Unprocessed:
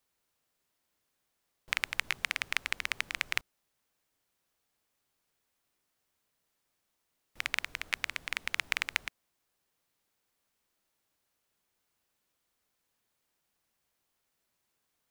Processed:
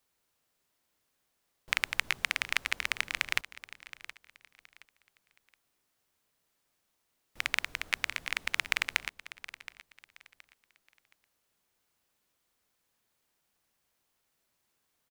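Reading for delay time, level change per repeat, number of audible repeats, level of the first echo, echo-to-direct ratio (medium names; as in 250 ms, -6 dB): 721 ms, -11.0 dB, 2, -16.0 dB, -15.5 dB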